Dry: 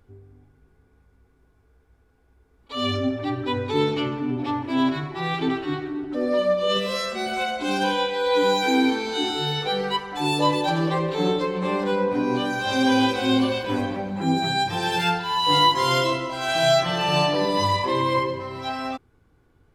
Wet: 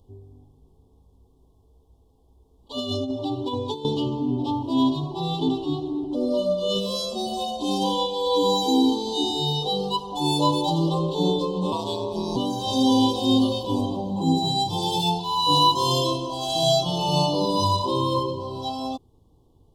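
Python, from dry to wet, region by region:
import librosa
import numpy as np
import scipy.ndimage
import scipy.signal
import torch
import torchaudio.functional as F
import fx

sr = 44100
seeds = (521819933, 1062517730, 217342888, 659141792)

y = fx.chain(x, sr, fx.low_shelf(hz=190.0, db=-9.0),
    fx.over_compress(threshold_db=-27.0, ratio=-0.5), at=(2.78, 3.85))
y = fx.chain(y, sr, fx.tilt_shelf(db=-7.0, hz=690.0),
    fx.comb(ms=6.6, depth=0.55),
    fx.ring_mod(carrier_hz=85.0), at=(11.72, 12.36))
y = scipy.signal.sosfilt(scipy.signal.ellip(3, 1.0, 40, [1000.0, 3200.0], 'bandstop', fs=sr, output='sos'), y)
y = fx.dynamic_eq(y, sr, hz=630.0, q=0.95, threshold_db=-32.0, ratio=4.0, max_db=-4)
y = y * 10.0 ** (2.5 / 20.0)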